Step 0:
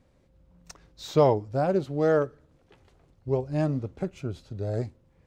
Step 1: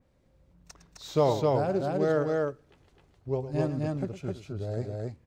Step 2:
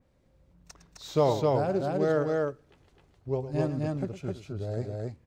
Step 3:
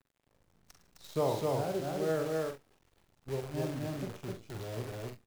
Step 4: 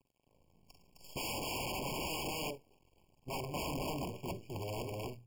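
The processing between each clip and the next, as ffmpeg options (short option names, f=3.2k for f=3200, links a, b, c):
-filter_complex "[0:a]asplit=2[a][b];[b]aecho=0:1:107.9|259.5:0.251|0.794[c];[a][c]amix=inputs=2:normalize=0,adynamicequalizer=threshold=0.01:dfrequency=3100:dqfactor=0.7:tfrequency=3100:tqfactor=0.7:attack=5:release=100:ratio=0.375:range=1.5:mode=boostabove:tftype=highshelf,volume=-4dB"
-af anull
-filter_complex "[0:a]acrusher=bits=7:dc=4:mix=0:aa=0.000001,asplit=2[a][b];[b]aecho=0:1:44|68:0.473|0.188[c];[a][c]amix=inputs=2:normalize=0,volume=-7.5dB"
-af "bandreject=f=60:t=h:w=6,bandreject=f=120:t=h:w=6,aeval=exprs='(mod(42.2*val(0)+1,2)-1)/42.2':c=same,afftfilt=real='re*eq(mod(floor(b*sr/1024/1100),2),0)':imag='im*eq(mod(floor(b*sr/1024/1100),2),0)':win_size=1024:overlap=0.75,volume=1dB"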